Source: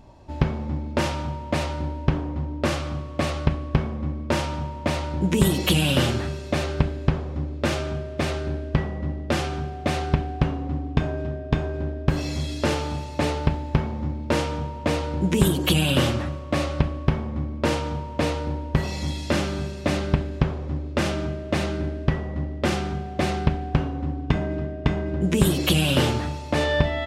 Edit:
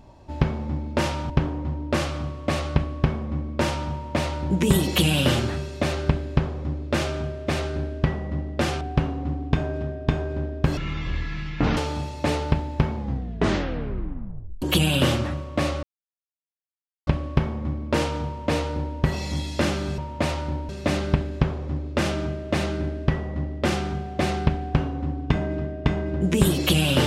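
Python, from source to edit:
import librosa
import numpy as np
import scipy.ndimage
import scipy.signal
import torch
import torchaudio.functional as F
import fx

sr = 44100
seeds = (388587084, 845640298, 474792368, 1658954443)

y = fx.edit(x, sr, fx.move(start_s=1.3, length_s=0.71, to_s=19.69),
    fx.cut(start_s=9.52, length_s=0.73),
    fx.speed_span(start_s=12.21, length_s=0.51, speed=0.51),
    fx.tape_stop(start_s=13.91, length_s=1.66),
    fx.insert_silence(at_s=16.78, length_s=1.24), tone=tone)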